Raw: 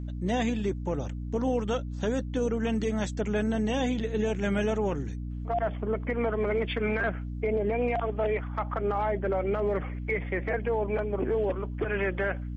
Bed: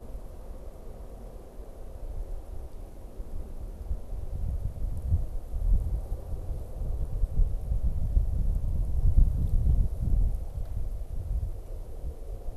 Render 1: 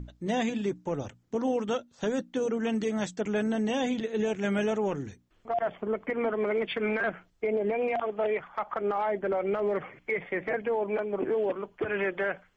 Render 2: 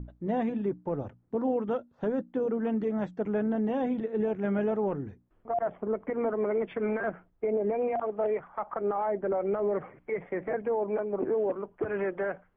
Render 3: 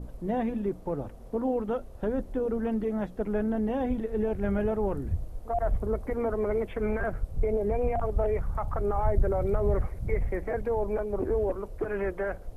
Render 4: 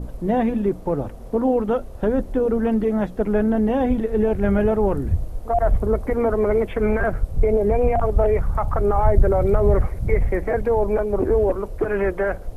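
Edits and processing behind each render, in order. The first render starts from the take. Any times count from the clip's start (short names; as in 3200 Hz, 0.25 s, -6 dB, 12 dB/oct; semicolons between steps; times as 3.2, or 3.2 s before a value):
notches 60/120/180/240/300 Hz
LPF 1200 Hz 12 dB/oct
add bed -4 dB
gain +9 dB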